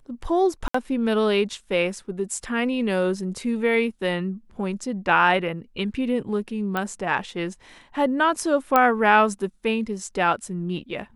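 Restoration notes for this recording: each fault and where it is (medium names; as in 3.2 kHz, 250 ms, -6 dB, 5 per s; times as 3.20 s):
0.68–0.74 s: dropout 64 ms
6.77 s: pop -13 dBFS
8.76 s: pop -5 dBFS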